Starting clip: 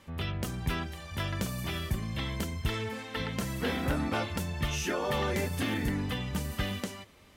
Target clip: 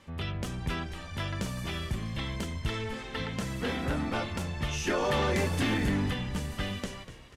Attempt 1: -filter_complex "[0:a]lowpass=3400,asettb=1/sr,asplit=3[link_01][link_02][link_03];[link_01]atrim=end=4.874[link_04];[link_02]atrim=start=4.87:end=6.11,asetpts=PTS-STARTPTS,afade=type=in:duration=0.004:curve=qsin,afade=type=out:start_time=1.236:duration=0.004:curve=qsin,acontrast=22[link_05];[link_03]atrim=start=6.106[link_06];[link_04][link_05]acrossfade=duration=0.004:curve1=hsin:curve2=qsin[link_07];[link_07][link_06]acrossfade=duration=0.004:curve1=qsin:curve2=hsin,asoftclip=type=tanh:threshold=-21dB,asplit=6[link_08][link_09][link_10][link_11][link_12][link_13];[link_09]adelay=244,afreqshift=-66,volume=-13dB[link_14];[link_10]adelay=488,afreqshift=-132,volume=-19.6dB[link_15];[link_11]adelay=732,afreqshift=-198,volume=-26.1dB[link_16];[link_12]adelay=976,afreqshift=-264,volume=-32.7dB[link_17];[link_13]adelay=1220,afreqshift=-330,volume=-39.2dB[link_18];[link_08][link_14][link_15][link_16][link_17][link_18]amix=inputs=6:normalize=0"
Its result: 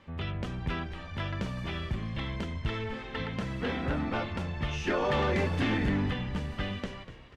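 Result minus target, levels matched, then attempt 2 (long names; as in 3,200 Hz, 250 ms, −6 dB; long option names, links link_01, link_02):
8,000 Hz band −11.5 dB
-filter_complex "[0:a]lowpass=9300,asettb=1/sr,asplit=3[link_01][link_02][link_03];[link_01]atrim=end=4.874[link_04];[link_02]atrim=start=4.87:end=6.11,asetpts=PTS-STARTPTS,afade=type=in:duration=0.004:curve=qsin,afade=type=out:start_time=1.236:duration=0.004:curve=qsin,acontrast=22[link_05];[link_03]atrim=start=6.106[link_06];[link_04][link_05]acrossfade=duration=0.004:curve1=hsin:curve2=qsin[link_07];[link_07][link_06]acrossfade=duration=0.004:curve1=qsin:curve2=hsin,asoftclip=type=tanh:threshold=-21dB,asplit=6[link_08][link_09][link_10][link_11][link_12][link_13];[link_09]adelay=244,afreqshift=-66,volume=-13dB[link_14];[link_10]adelay=488,afreqshift=-132,volume=-19.6dB[link_15];[link_11]adelay=732,afreqshift=-198,volume=-26.1dB[link_16];[link_12]adelay=976,afreqshift=-264,volume=-32.7dB[link_17];[link_13]adelay=1220,afreqshift=-330,volume=-39.2dB[link_18];[link_08][link_14][link_15][link_16][link_17][link_18]amix=inputs=6:normalize=0"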